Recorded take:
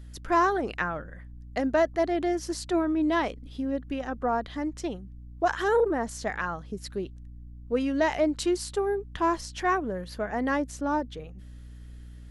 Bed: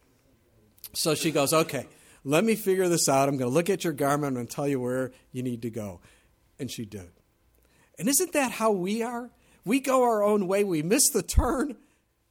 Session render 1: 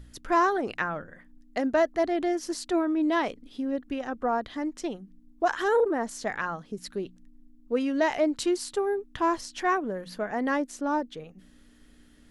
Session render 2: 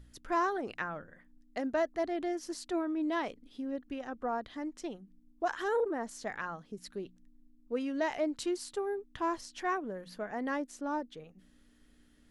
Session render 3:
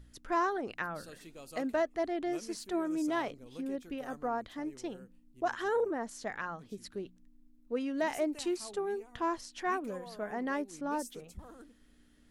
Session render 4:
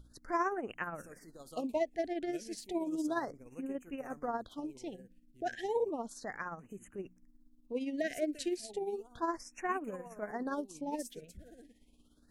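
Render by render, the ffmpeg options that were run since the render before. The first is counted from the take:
ffmpeg -i in.wav -af "bandreject=frequency=60:width_type=h:width=4,bandreject=frequency=120:width_type=h:width=4,bandreject=frequency=180:width_type=h:width=4" out.wav
ffmpeg -i in.wav -af "volume=-7.5dB" out.wav
ffmpeg -i in.wav -i bed.wav -filter_complex "[1:a]volume=-26dB[link_01];[0:a][link_01]amix=inputs=2:normalize=0" out.wav
ffmpeg -i in.wav -af "tremolo=f=17:d=0.51,afftfilt=real='re*(1-between(b*sr/1024,990*pow(4400/990,0.5+0.5*sin(2*PI*0.33*pts/sr))/1.41,990*pow(4400/990,0.5+0.5*sin(2*PI*0.33*pts/sr))*1.41))':imag='im*(1-between(b*sr/1024,990*pow(4400/990,0.5+0.5*sin(2*PI*0.33*pts/sr))/1.41,990*pow(4400/990,0.5+0.5*sin(2*PI*0.33*pts/sr))*1.41))':win_size=1024:overlap=0.75" out.wav

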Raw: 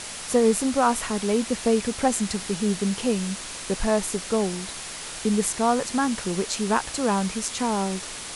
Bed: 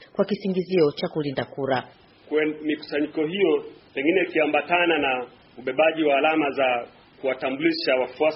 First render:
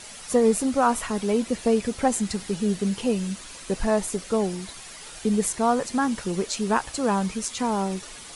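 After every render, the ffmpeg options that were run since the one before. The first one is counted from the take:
ffmpeg -i in.wav -af "afftdn=noise_reduction=9:noise_floor=-36" out.wav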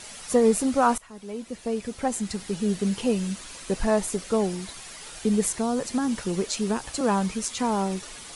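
ffmpeg -i in.wav -filter_complex "[0:a]asettb=1/sr,asplit=3[link_01][link_02][link_03];[link_01]atrim=end=5.544[link_04];[link_02]atrim=start=5.54:end=7.01,asetpts=PTS-STARTPTS,afade=type=in:duration=0.004:curve=qsin,afade=type=out:start_time=1.466:duration=0.004:curve=qsin,acrossover=split=480|3000[link_05][link_06][link_07];[link_06]acompressor=threshold=-31dB:ratio=6:attack=3.2:release=140:knee=2.83:detection=peak[link_08];[link_05][link_08][link_07]amix=inputs=3:normalize=0[link_09];[link_03]atrim=start=7.006[link_10];[link_04][link_09]acrossfade=duration=0.004:curve1=hsin:curve2=qsin[link_11];[link_11][link_10]acrossfade=duration=0.004:curve1=qsin:curve2=hsin,asplit=2[link_12][link_13];[link_12]atrim=end=0.98,asetpts=PTS-STARTPTS,afade=type=out:start_time=0.976:duration=0.004:curve=hsin:silence=0.0841395[link_14];[link_13]atrim=start=0.98,asetpts=PTS-STARTPTS,afade=type=in:duration=1.93:silence=0.0841395[link_15];[link_14][link_15]concat=n=2:v=0:a=1" out.wav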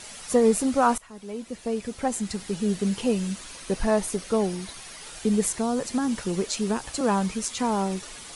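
ffmpeg -i in.wav -filter_complex "[0:a]asettb=1/sr,asplit=3[link_01][link_02][link_03];[link_01]atrim=end=3.524[link_04];[link_02]atrim=start=3.52:end=5.06,asetpts=PTS-STARTPTS,afade=type=in:duration=0.004:curve=qsin,afade=type=out:start_time=1.536:duration=0.004:curve=qsin,bandreject=frequency=7400:width=11[link_05];[link_03]atrim=start=5.056[link_06];[link_04][link_05]acrossfade=duration=0.004:curve1=hsin:curve2=qsin[link_07];[link_07][link_06]acrossfade=duration=0.004:curve1=qsin:curve2=hsin" out.wav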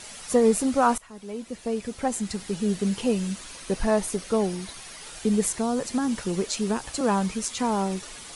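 ffmpeg -i in.wav -af anull out.wav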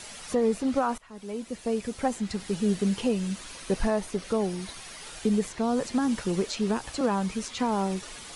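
ffmpeg -i in.wav -filter_complex "[0:a]acrossover=split=570|5200[link_01][link_02][link_03];[link_03]acompressor=threshold=-45dB:ratio=6[link_04];[link_01][link_02][link_04]amix=inputs=3:normalize=0,alimiter=limit=-15.5dB:level=0:latency=1:release=329" out.wav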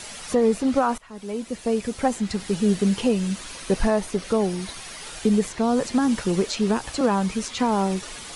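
ffmpeg -i in.wav -af "volume=5dB" out.wav

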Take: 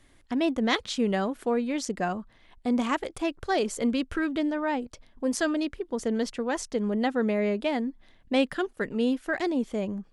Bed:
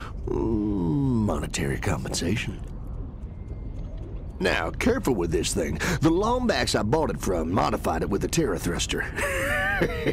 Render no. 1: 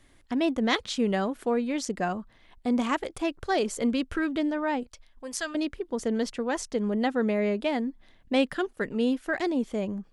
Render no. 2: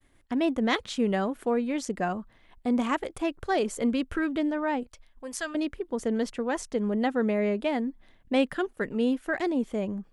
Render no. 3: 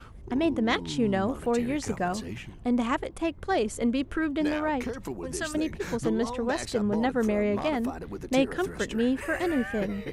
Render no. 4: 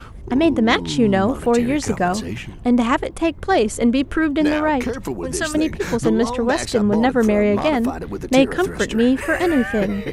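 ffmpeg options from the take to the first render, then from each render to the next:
ffmpeg -i in.wav -filter_complex "[0:a]asettb=1/sr,asplit=3[link_01][link_02][link_03];[link_01]atrim=end=4.834[link_04];[link_02]atrim=start=4.83:end=5.55,asetpts=PTS-STARTPTS,afade=type=in:duration=0.004:curve=qsin,afade=type=out:start_time=0.716:duration=0.004:curve=qsin,equalizer=frequency=240:width=0.38:gain=-14.5[link_05];[link_03]atrim=start=5.546[link_06];[link_04][link_05]acrossfade=duration=0.004:curve1=hsin:curve2=qsin[link_07];[link_07][link_06]acrossfade=duration=0.004:curve1=qsin:curve2=hsin" out.wav
ffmpeg -i in.wav -af "agate=range=-33dB:threshold=-54dB:ratio=3:detection=peak,equalizer=frequency=4900:width=1.1:gain=-5" out.wav
ffmpeg -i in.wav -i bed.wav -filter_complex "[1:a]volume=-12dB[link_01];[0:a][link_01]amix=inputs=2:normalize=0" out.wav
ffmpeg -i in.wav -af "volume=9.5dB" out.wav

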